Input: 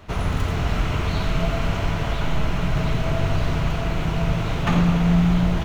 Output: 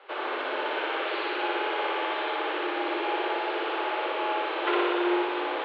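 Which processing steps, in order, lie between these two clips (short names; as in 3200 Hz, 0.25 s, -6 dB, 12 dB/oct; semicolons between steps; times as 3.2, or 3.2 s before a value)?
mistuned SSB +180 Hz 210–3500 Hz; flutter echo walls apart 10.3 m, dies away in 1.4 s; gain -3.5 dB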